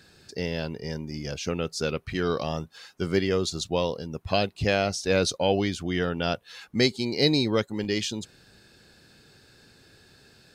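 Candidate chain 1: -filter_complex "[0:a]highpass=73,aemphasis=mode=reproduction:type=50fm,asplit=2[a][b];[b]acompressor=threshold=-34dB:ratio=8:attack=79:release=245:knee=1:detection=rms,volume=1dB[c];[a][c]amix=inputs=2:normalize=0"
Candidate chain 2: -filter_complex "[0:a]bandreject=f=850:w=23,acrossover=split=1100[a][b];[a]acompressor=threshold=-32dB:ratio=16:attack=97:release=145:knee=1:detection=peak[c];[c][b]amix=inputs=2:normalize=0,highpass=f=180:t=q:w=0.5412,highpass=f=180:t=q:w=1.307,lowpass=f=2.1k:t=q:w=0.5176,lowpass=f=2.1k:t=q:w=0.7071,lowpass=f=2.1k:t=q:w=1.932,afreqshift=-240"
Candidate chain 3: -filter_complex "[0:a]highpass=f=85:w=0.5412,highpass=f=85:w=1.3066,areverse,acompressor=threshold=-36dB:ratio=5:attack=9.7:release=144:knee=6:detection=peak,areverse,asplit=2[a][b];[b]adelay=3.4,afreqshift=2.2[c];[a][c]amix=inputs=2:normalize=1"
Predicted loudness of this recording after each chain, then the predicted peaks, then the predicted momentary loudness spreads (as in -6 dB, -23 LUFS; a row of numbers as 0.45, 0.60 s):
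-25.0, -34.0, -41.5 LUFS; -6.0, -14.0, -27.0 dBFS; 8, 8, 18 LU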